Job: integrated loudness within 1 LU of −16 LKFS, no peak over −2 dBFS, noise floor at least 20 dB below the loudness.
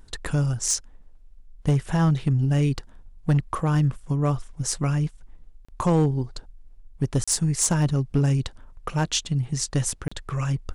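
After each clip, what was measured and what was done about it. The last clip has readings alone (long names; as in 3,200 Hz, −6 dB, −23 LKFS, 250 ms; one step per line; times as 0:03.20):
share of clipped samples 0.6%; peaks flattened at −14.0 dBFS; number of dropouts 3; longest dropout 35 ms; integrated loudness −24.5 LKFS; sample peak −14.0 dBFS; target loudness −16.0 LKFS
→ clipped peaks rebuilt −14 dBFS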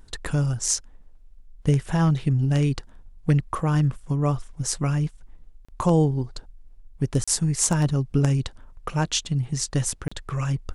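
share of clipped samples 0.0%; number of dropouts 3; longest dropout 35 ms
→ repair the gap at 0:05.65/0:07.24/0:10.08, 35 ms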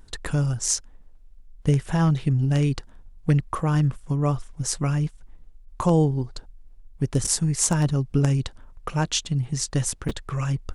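number of dropouts 0; integrated loudness −24.0 LKFS; sample peak −5.0 dBFS; target loudness −16.0 LKFS
→ level +8 dB
brickwall limiter −2 dBFS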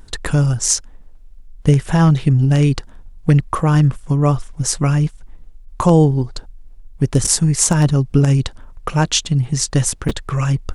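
integrated loudness −16.5 LKFS; sample peak −2.0 dBFS; background noise floor −41 dBFS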